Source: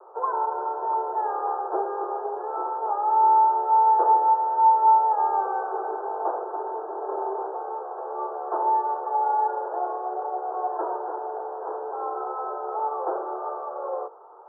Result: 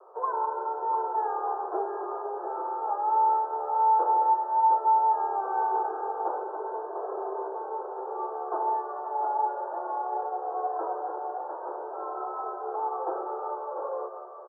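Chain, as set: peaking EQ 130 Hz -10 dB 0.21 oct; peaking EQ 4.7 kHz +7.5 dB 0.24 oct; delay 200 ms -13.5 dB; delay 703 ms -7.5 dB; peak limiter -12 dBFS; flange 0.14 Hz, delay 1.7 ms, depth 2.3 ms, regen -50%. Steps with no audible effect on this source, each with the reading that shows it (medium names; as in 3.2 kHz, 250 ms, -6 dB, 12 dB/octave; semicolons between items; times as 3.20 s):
peaking EQ 130 Hz: input has nothing below 320 Hz; peaking EQ 4.7 kHz: input has nothing above 1.4 kHz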